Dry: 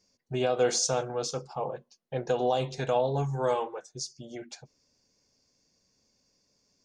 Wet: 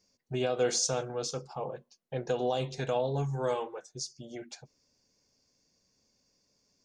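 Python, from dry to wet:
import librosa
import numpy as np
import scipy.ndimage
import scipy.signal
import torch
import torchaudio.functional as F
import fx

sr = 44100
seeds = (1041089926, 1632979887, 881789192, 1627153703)

y = fx.dynamic_eq(x, sr, hz=850.0, q=1.1, threshold_db=-39.0, ratio=4.0, max_db=-4)
y = y * 10.0 ** (-1.5 / 20.0)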